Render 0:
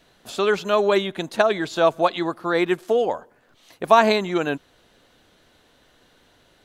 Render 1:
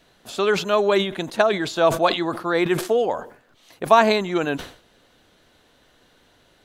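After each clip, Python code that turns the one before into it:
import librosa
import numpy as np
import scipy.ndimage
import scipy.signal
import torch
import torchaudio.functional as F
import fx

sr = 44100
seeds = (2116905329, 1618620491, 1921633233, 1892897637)

y = fx.sustainer(x, sr, db_per_s=120.0)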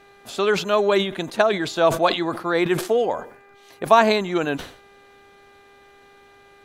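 y = fx.dmg_buzz(x, sr, base_hz=400.0, harmonics=6, level_db=-52.0, tilt_db=-3, odd_only=False)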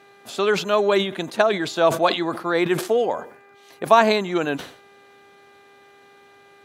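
y = scipy.signal.sosfilt(scipy.signal.butter(2, 120.0, 'highpass', fs=sr, output='sos'), x)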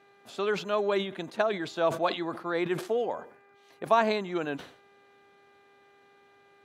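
y = fx.high_shelf(x, sr, hz=5600.0, db=-8.0)
y = y * librosa.db_to_amplitude(-8.5)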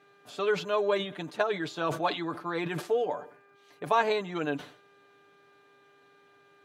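y = x + 0.68 * np.pad(x, (int(6.8 * sr / 1000.0), 0))[:len(x)]
y = y * librosa.db_to_amplitude(-1.5)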